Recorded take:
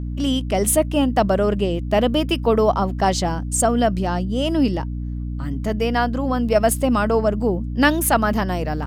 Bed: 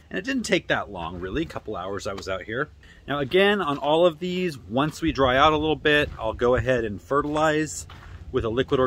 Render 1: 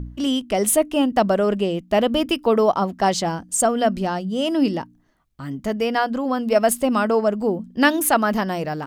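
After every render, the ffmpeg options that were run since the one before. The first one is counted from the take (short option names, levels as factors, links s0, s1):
-af "bandreject=f=60:t=h:w=4,bandreject=f=120:t=h:w=4,bandreject=f=180:t=h:w=4,bandreject=f=240:t=h:w=4,bandreject=f=300:t=h:w=4"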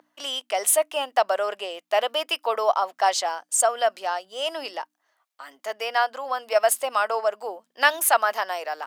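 -af "highpass=f=620:w=0.5412,highpass=f=620:w=1.3066"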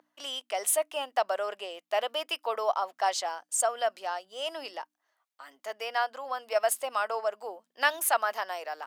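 -af "volume=0.473"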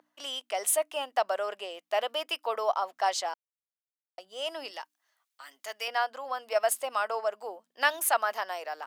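-filter_complex "[0:a]asettb=1/sr,asplit=3[s0][s1][s2];[s0]atrim=end=4.714[s3];[s1]atrim=start=4.71:end=5.88,asetpts=PTS-STARTPTS,afade=t=in:d=0.004:c=qsin,afade=t=out:st=1.166:d=0.004:c=qsin,tiltshelf=f=1400:g=-6.5[s4];[s2]atrim=start=5.876[s5];[s3][s4]acrossfade=d=0.004:c1=hsin:c2=qsin[s6];[s6][s5]acrossfade=d=0.004:c1=qsin:c2=hsin,asplit=3[s7][s8][s9];[s7]atrim=end=3.34,asetpts=PTS-STARTPTS,afade=t=out:st=3.336:d=0.004:c=hsin[s10];[s8]atrim=start=3.34:end=4.18,asetpts=PTS-STARTPTS,volume=0[s11];[s9]atrim=start=4.18,asetpts=PTS-STARTPTS,afade=t=in:d=0.004:c=hsin[s12];[s10][s11][s12]concat=n=3:v=0:a=1"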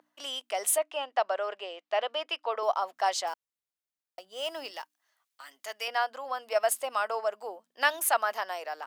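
-filter_complex "[0:a]asettb=1/sr,asplit=3[s0][s1][s2];[s0]atrim=end=0.784[s3];[s1]atrim=start=0.78:end=2.63,asetpts=PTS-STARTPTS,afade=t=in:d=0.004:c=qsin,afade=t=out:st=1.846:d=0.004:c=qsin,highpass=290,lowpass=4400[s4];[s2]atrim=start=2.626[s5];[s3][s4]acrossfade=d=0.004:c1=hsin:c2=qsin[s6];[s6][s5]acrossfade=d=0.004:c1=qsin:c2=hsin,asettb=1/sr,asplit=3[s7][s8][s9];[s7]atrim=end=3.274[s10];[s8]atrim=start=3.27:end=5.53,asetpts=PTS-STARTPTS,afade=t=in:d=0.004:c=qsin,afade=t=out:st=2.256:d=0.004:c=qsin,acrusher=bits=5:mode=log:mix=0:aa=0.000001[s11];[s9]atrim=start=5.526[s12];[s10][s11]acrossfade=d=0.004:c1=hsin:c2=qsin[s13];[s13][s12]acrossfade=d=0.004:c1=qsin:c2=hsin"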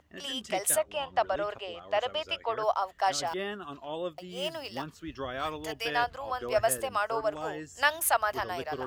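-filter_complex "[1:a]volume=0.15[s0];[0:a][s0]amix=inputs=2:normalize=0"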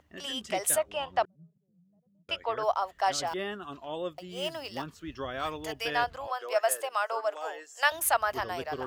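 -filter_complex "[0:a]asettb=1/sr,asplit=3[s0][s1][s2];[s0]atrim=end=1.254[s3];[s1]atrim=start=1.25:end=2.29,asetpts=PTS-STARTPTS,afade=t=in:d=0.004:c=qsin,afade=t=out:st=1.036:d=0.004:c=qsin,asuperpass=centerf=170:order=4:qfactor=4.9[s4];[s2]atrim=start=2.286[s5];[s3][s4]acrossfade=d=0.004:c1=hsin:c2=qsin[s6];[s6][s5]acrossfade=d=0.004:c1=qsin:c2=hsin,asettb=1/sr,asplit=3[s7][s8][s9];[s7]atrim=end=6.274[s10];[s8]atrim=start=6.27:end=7.92,asetpts=PTS-STARTPTS,afade=t=in:d=0.004:c=qsin,afade=t=out:st=1.646:d=0.004:c=qsin,highpass=f=480:w=0.5412,highpass=f=480:w=1.3066[s11];[s9]atrim=start=7.916[s12];[s10][s11]acrossfade=d=0.004:c1=hsin:c2=qsin[s13];[s13][s12]acrossfade=d=0.004:c1=qsin:c2=hsin"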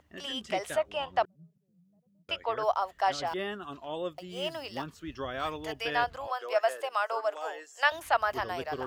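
-filter_complex "[0:a]acrossover=split=4600[s0][s1];[s1]acompressor=threshold=0.00316:ratio=4:attack=1:release=60[s2];[s0][s2]amix=inputs=2:normalize=0"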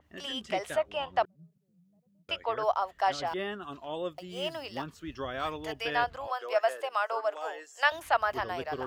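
-af "adynamicequalizer=threshold=0.00447:dfrequency=4600:dqfactor=0.7:tfrequency=4600:tqfactor=0.7:attack=5:release=100:ratio=0.375:range=3:mode=cutabove:tftype=highshelf"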